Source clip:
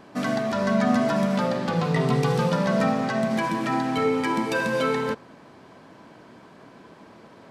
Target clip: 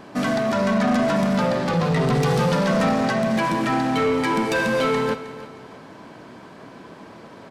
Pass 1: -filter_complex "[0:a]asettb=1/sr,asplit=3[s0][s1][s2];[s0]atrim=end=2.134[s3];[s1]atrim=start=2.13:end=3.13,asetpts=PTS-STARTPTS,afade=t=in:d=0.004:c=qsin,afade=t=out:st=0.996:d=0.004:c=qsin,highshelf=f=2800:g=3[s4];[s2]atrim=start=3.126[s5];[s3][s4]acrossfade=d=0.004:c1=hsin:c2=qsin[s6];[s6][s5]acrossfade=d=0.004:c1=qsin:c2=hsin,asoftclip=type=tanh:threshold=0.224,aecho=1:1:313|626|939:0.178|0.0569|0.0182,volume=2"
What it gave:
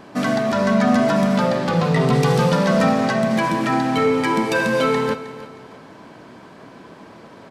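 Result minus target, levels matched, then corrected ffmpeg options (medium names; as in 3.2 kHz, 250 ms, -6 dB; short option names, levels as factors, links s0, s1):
saturation: distortion -11 dB
-filter_complex "[0:a]asettb=1/sr,asplit=3[s0][s1][s2];[s0]atrim=end=2.134[s3];[s1]atrim=start=2.13:end=3.13,asetpts=PTS-STARTPTS,afade=t=in:d=0.004:c=qsin,afade=t=out:st=0.996:d=0.004:c=qsin,highshelf=f=2800:g=3[s4];[s2]atrim=start=3.126[s5];[s3][s4]acrossfade=d=0.004:c1=hsin:c2=qsin[s6];[s6][s5]acrossfade=d=0.004:c1=qsin:c2=hsin,asoftclip=type=tanh:threshold=0.0841,aecho=1:1:313|626|939:0.178|0.0569|0.0182,volume=2"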